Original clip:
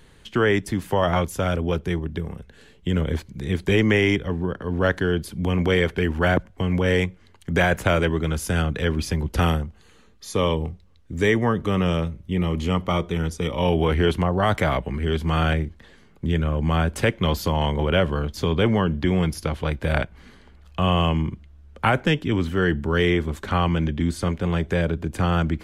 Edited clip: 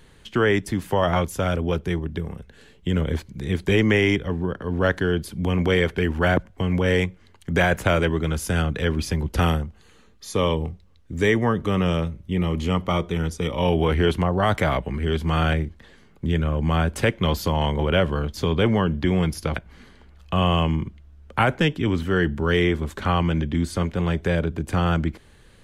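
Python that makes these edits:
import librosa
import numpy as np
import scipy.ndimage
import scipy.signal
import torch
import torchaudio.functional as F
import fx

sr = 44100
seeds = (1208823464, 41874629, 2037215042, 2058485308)

y = fx.edit(x, sr, fx.cut(start_s=19.56, length_s=0.46), tone=tone)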